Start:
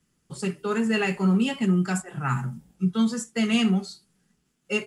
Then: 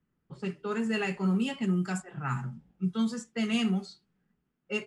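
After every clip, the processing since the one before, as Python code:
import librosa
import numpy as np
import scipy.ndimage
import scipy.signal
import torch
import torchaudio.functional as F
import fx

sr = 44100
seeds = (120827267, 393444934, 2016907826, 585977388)

y = fx.env_lowpass(x, sr, base_hz=1800.0, full_db=-18.0)
y = y * 10.0 ** (-6.0 / 20.0)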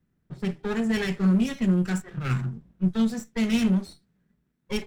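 y = fx.lower_of_two(x, sr, delay_ms=0.53)
y = fx.low_shelf(y, sr, hz=270.0, db=6.0)
y = y * 10.0 ** (2.5 / 20.0)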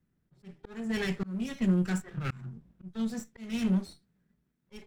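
y = fx.auto_swell(x, sr, attack_ms=388.0)
y = y * 10.0 ** (-3.5 / 20.0)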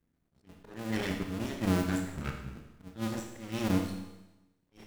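y = fx.cycle_switch(x, sr, every=2, mode='muted')
y = fx.rev_schroeder(y, sr, rt60_s=1.0, comb_ms=25, drr_db=3.0)
y = fx.attack_slew(y, sr, db_per_s=250.0)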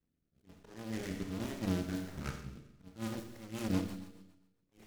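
y = fx.rotary_switch(x, sr, hz=1.2, then_hz=7.5, switch_at_s=2.94)
y = fx.echo_feedback(y, sr, ms=134, feedback_pct=43, wet_db=-18.0)
y = fx.noise_mod_delay(y, sr, seeds[0], noise_hz=3600.0, depth_ms=0.049)
y = y * 10.0 ** (-3.5 / 20.0)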